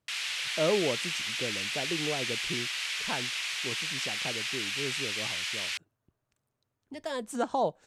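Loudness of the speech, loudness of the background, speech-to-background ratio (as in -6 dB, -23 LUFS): -35.5 LUFS, -31.0 LUFS, -4.5 dB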